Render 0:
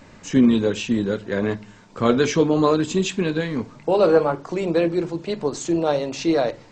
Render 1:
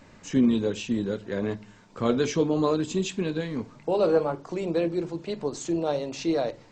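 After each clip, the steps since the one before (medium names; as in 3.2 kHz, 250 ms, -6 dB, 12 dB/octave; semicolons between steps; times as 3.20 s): dynamic bell 1.6 kHz, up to -4 dB, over -35 dBFS, Q 0.96; trim -5.5 dB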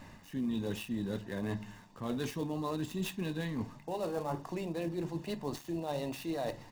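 dead-time distortion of 0.068 ms; comb 1.1 ms, depth 44%; reverse; compression 6:1, threshold -33 dBFS, peak gain reduction 15 dB; reverse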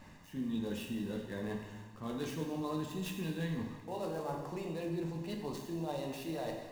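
plate-style reverb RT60 1.3 s, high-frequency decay 1×, DRR 1.5 dB; trim -4.5 dB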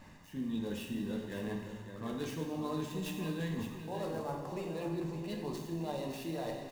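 delay 561 ms -8.5 dB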